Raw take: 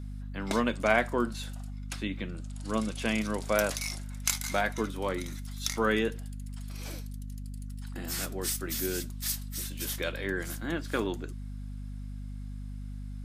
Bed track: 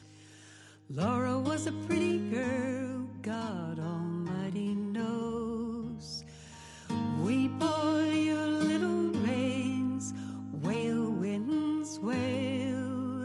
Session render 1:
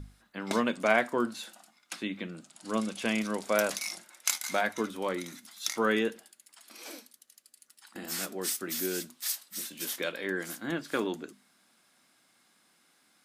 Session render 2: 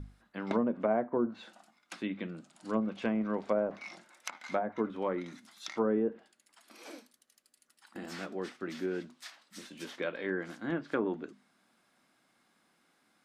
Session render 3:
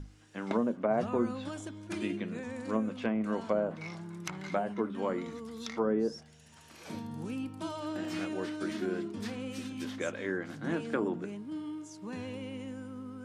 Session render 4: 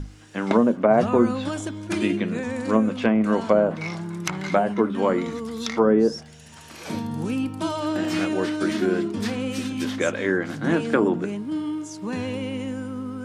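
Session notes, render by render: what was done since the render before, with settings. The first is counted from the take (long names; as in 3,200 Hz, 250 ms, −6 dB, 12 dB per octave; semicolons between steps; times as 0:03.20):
mains-hum notches 50/100/150/200/250 Hz
treble cut that deepens with the level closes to 690 Hz, closed at −24 dBFS; high-shelf EQ 2,800 Hz −10.5 dB
mix in bed track −8.5 dB
level +11.5 dB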